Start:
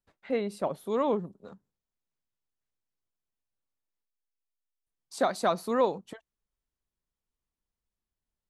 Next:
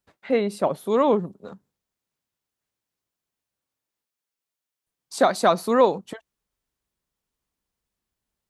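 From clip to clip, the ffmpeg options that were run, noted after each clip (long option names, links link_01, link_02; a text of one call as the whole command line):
ffmpeg -i in.wav -af "highpass=frequency=75:poles=1,volume=8dB" out.wav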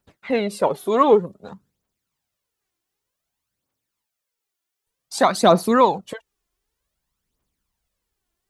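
ffmpeg -i in.wav -af "aphaser=in_gain=1:out_gain=1:delay=3:decay=0.56:speed=0.54:type=triangular,volume=3dB" out.wav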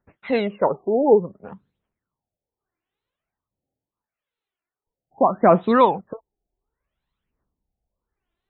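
ffmpeg -i in.wav -af "afftfilt=real='re*lt(b*sr/1024,840*pow(4300/840,0.5+0.5*sin(2*PI*0.74*pts/sr)))':imag='im*lt(b*sr/1024,840*pow(4300/840,0.5+0.5*sin(2*PI*0.74*pts/sr)))':win_size=1024:overlap=0.75" out.wav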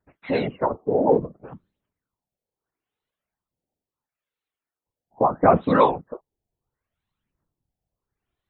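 ffmpeg -i in.wav -af "afftfilt=real='hypot(re,im)*cos(2*PI*random(0))':imag='hypot(re,im)*sin(2*PI*random(1))':win_size=512:overlap=0.75,volume=4dB" out.wav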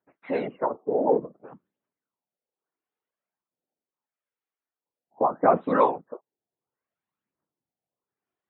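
ffmpeg -i in.wav -af "highpass=240,lowpass=2100,volume=-3dB" out.wav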